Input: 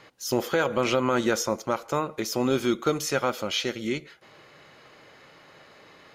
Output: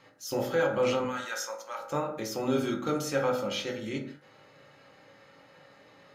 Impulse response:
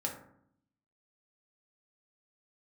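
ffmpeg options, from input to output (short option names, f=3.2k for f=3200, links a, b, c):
-filter_complex "[0:a]asettb=1/sr,asplit=3[a][b][c];[a]atrim=end=1.044[d];[b]atrim=start=1.04:end=1.79,asetpts=PTS-STARTPTS,afade=t=in:d=0.004:c=qsin,afade=t=out:st=0.746:d=0.004:c=qsin,highpass=1.1k[e];[c]atrim=start=1.786[f];[d][e]acrossfade=d=0.004:c1=hsin:c2=qsin[g];[g][f]acrossfade=d=0.004:c1=qsin:c2=hsin[h];[1:a]atrim=start_sample=2205,afade=t=out:st=0.26:d=0.01,atrim=end_sample=11907[i];[h][i]afir=irnorm=-1:irlink=0,volume=-7dB"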